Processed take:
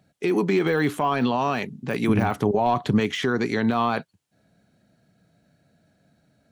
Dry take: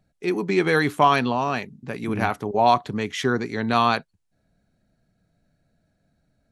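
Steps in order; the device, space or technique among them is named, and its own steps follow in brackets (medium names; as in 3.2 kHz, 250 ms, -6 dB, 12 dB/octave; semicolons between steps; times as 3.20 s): broadcast voice chain (high-pass 110 Hz 12 dB/octave; de-esser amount 100%; compression, threshold -22 dBFS, peak gain reduction 7.5 dB; peaking EQ 3.1 kHz +3.5 dB 0.35 oct; peak limiter -20 dBFS, peak gain reduction 8.5 dB); 2.09–3.00 s: bass shelf 150 Hz +9.5 dB; trim +7 dB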